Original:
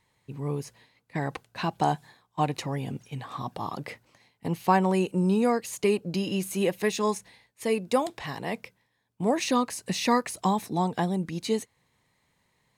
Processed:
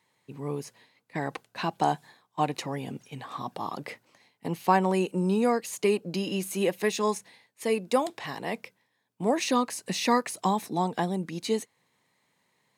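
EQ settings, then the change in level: HPF 180 Hz 12 dB/oct; 0.0 dB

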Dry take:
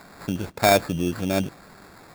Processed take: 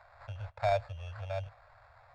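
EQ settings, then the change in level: elliptic band-stop 110–600 Hz, stop band 40 dB; dynamic EQ 1300 Hz, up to -6 dB, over -33 dBFS, Q 0.82; tape spacing loss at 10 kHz 35 dB; -5.0 dB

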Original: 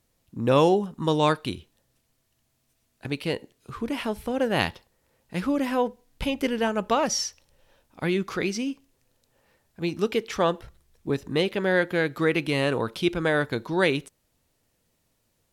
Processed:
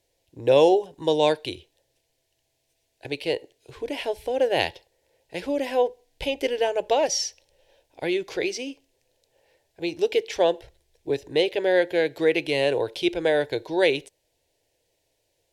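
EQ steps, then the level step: low shelf 190 Hz -11.5 dB; high shelf 7300 Hz -12 dB; fixed phaser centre 510 Hz, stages 4; +6.0 dB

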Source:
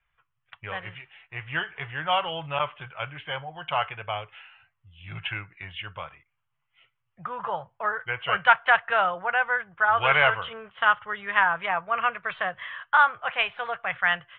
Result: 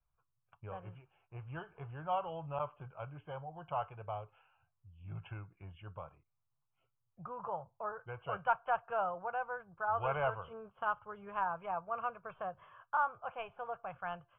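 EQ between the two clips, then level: dynamic EQ 250 Hz, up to -5 dB, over -42 dBFS, Q 0.82; running mean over 23 samples; air absorption 450 m; -4.0 dB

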